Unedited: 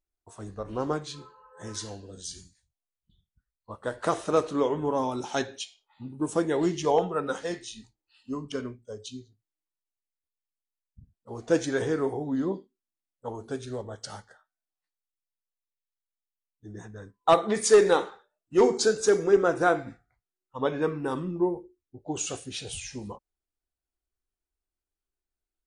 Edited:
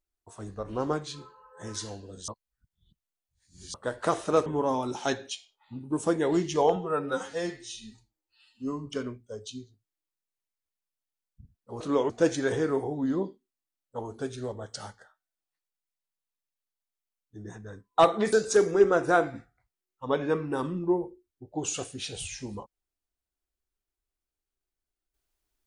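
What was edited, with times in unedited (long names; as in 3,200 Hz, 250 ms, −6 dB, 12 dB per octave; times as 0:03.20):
0:02.28–0:03.74: reverse
0:04.46–0:04.75: move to 0:11.39
0:07.05–0:08.46: time-stretch 1.5×
0:17.62–0:18.85: remove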